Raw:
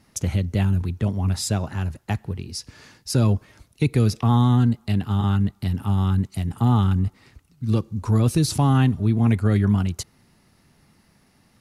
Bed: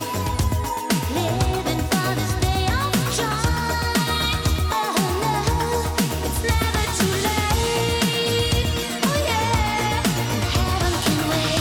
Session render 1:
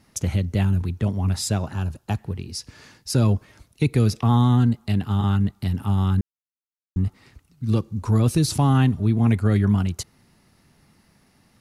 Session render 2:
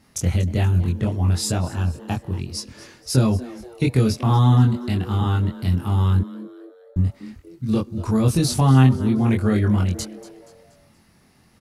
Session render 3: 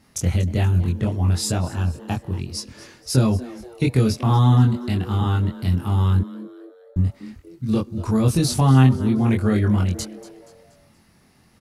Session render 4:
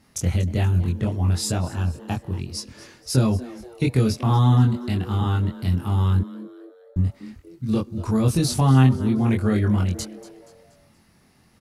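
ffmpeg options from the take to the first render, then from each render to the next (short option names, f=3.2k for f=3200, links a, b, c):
-filter_complex "[0:a]asettb=1/sr,asplit=3[a][b][c];[a]atrim=end=1.724[d];[b]atrim=start=1.72:end=2.18,asetpts=PTS-STARTPTS,afade=t=in:d=0.004:c=qsin,afade=t=out:st=0.456:d=0.004:c=qsin,equalizer=f=2k:t=o:w=0.26:g=-12.5[e];[c]atrim=start=2.176[f];[d][e]acrossfade=d=0.004:c1=hsin:c2=qsin[g];[g][f]acrossfade=d=0.004:c1=qsin:c2=hsin,asplit=3[h][i][j];[h]atrim=end=6.21,asetpts=PTS-STARTPTS,afade=t=out:st=6.206:d=0.004:c=hsin[k];[i]atrim=start=6.21:end=6.96,asetpts=PTS-STARTPTS,volume=0[l];[j]atrim=start=6.96,asetpts=PTS-STARTPTS,afade=t=in:d=0.004:c=hsin[m];[k][l][m]concat=n=3:v=0:a=1"
-filter_complex "[0:a]asplit=2[a][b];[b]adelay=23,volume=-2dB[c];[a][c]amix=inputs=2:normalize=0,asplit=5[d][e][f][g][h];[e]adelay=238,afreqshift=120,volume=-18dB[i];[f]adelay=476,afreqshift=240,volume=-25.1dB[j];[g]adelay=714,afreqshift=360,volume=-32.3dB[k];[h]adelay=952,afreqshift=480,volume=-39.4dB[l];[d][i][j][k][l]amix=inputs=5:normalize=0"
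-af anull
-af "volume=-1.5dB"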